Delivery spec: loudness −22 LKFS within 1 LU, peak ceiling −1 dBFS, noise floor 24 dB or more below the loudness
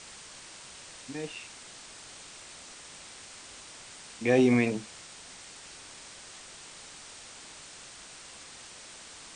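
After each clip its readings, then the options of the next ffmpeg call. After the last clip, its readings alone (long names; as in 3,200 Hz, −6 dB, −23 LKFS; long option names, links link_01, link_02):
background noise floor −48 dBFS; target noise floor −56 dBFS; integrated loudness −31.5 LKFS; sample peak −11.5 dBFS; target loudness −22.0 LKFS
→ -af "afftdn=noise_reduction=8:noise_floor=-48"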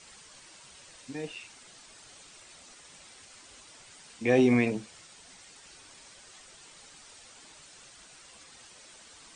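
background noise floor −54 dBFS; integrated loudness −28.0 LKFS; sample peak −11.5 dBFS; target loudness −22.0 LKFS
→ -af "volume=6dB"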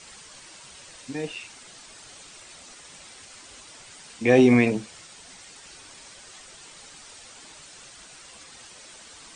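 integrated loudness −22.0 LKFS; sample peak −5.5 dBFS; background noise floor −48 dBFS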